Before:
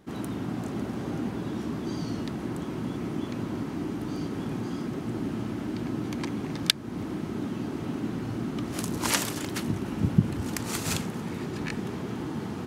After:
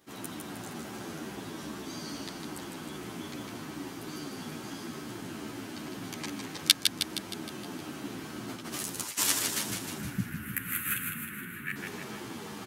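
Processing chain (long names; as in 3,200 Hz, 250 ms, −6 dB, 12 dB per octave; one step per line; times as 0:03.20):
0:09.97–0:11.76: drawn EQ curve 240 Hz 0 dB, 770 Hz −26 dB, 1,500 Hz +7 dB, 2,800 Hz −2 dB, 5,200 Hz −29 dB, 12,000 Hz +3 dB
repeating echo 156 ms, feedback 56%, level −5 dB
0:08.48–0:09.18: compressor whose output falls as the input rises −32 dBFS, ratio −0.5
spectral tilt +3 dB per octave
barber-pole flanger 10.4 ms −2.4 Hz
level −1.5 dB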